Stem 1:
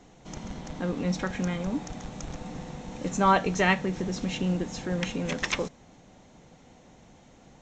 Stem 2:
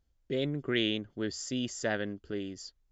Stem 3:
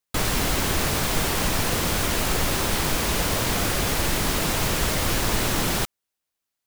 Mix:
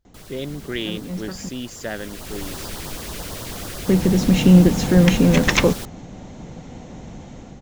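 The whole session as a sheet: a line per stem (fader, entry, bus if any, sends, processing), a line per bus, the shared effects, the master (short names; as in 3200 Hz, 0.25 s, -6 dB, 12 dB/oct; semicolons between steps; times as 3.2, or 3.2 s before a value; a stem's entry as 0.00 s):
+2.5 dB, 0.05 s, muted 1.49–3.88, no send, low shelf 390 Hz +9 dB; AGC gain up to 8.5 dB; auto duck -19 dB, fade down 0.40 s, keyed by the second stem
+2.0 dB, 0.00 s, no send, dry
1.73 s -19 dB -> 2.47 s -7.5 dB, 0.00 s, no send, LFO notch sine 9.1 Hz 800–2500 Hz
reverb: off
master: dry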